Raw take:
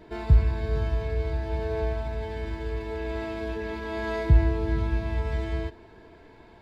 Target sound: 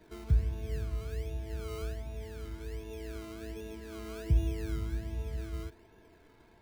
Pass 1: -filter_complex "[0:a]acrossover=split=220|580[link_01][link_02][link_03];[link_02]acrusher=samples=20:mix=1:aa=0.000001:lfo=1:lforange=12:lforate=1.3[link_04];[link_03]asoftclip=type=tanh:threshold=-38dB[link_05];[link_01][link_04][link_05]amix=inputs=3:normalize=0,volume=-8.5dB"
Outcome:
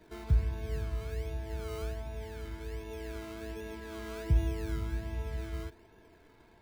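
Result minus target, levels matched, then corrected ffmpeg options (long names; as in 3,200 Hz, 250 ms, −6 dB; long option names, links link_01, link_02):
soft clipping: distortion −7 dB
-filter_complex "[0:a]acrossover=split=220|580[link_01][link_02][link_03];[link_02]acrusher=samples=20:mix=1:aa=0.000001:lfo=1:lforange=12:lforate=1.3[link_04];[link_03]asoftclip=type=tanh:threshold=-50dB[link_05];[link_01][link_04][link_05]amix=inputs=3:normalize=0,volume=-8.5dB"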